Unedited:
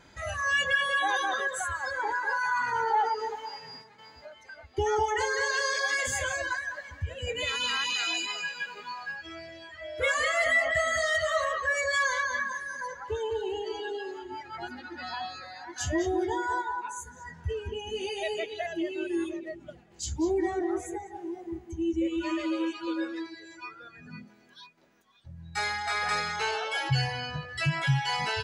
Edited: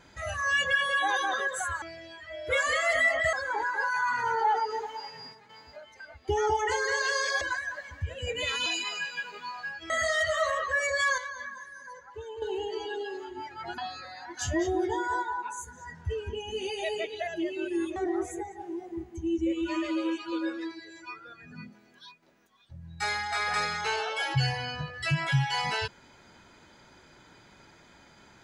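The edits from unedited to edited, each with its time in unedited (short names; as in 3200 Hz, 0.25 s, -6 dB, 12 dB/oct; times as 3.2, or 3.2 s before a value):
5.9–6.41 cut
7.66–8.09 cut
9.33–10.84 move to 1.82
12.12–13.36 gain -9 dB
14.72–15.17 cut
19.35–20.51 cut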